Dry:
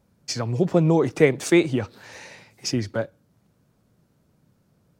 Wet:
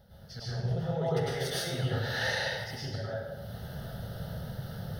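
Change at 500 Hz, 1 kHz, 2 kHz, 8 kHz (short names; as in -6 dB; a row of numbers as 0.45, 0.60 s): -11.5, -5.0, -3.5, -9.0 dB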